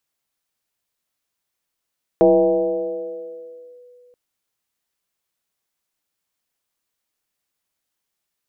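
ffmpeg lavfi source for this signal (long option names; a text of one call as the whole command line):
ffmpeg -f lavfi -i "aevalsrc='0.398*pow(10,-3*t/2.77)*sin(2*PI*492*t+1.3*clip(1-t/1.64,0,1)*sin(2*PI*0.31*492*t))':duration=1.93:sample_rate=44100" out.wav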